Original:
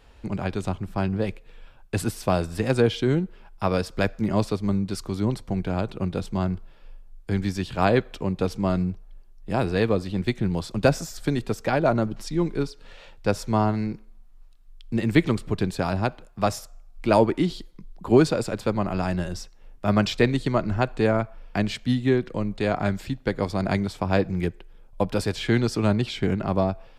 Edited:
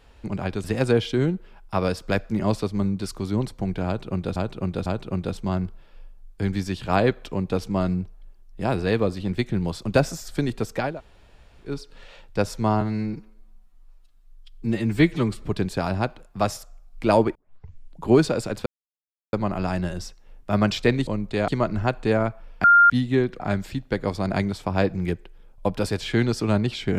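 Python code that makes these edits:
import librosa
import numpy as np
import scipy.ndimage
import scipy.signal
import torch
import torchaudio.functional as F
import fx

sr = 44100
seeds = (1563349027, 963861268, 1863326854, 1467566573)

y = fx.edit(x, sr, fx.cut(start_s=0.64, length_s=1.89),
    fx.repeat(start_s=5.75, length_s=0.5, count=3),
    fx.room_tone_fill(start_s=11.78, length_s=0.81, crossfade_s=0.24),
    fx.stretch_span(start_s=13.7, length_s=1.74, factor=1.5),
    fx.tape_start(start_s=17.37, length_s=0.72),
    fx.insert_silence(at_s=18.68, length_s=0.67),
    fx.bleep(start_s=21.58, length_s=0.26, hz=1400.0, db=-10.0),
    fx.move(start_s=22.34, length_s=0.41, to_s=20.42), tone=tone)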